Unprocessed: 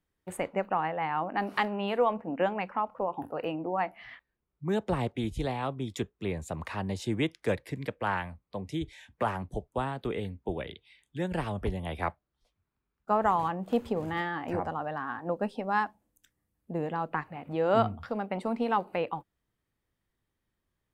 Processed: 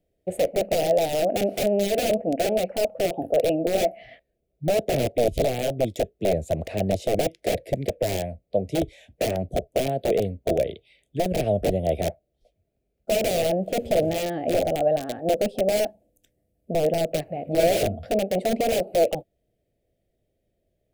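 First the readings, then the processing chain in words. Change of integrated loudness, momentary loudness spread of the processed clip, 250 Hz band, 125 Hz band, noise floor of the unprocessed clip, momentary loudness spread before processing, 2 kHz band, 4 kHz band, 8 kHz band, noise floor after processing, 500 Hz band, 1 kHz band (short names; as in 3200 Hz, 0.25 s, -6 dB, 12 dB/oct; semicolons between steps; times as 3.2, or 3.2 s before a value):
+7.5 dB, 6 LU, +5.0 dB, +5.0 dB, -83 dBFS, 9 LU, +0.5 dB, +10.5 dB, +17.5 dB, -75 dBFS, +11.0 dB, 0.0 dB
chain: wrapped overs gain 25 dB; EQ curve 280 Hz 0 dB, 660 Hz +12 dB, 1000 Hz -27 dB, 2300 Hz -6 dB, 5400 Hz -8 dB, 12000 Hz -6 dB; gain +7.5 dB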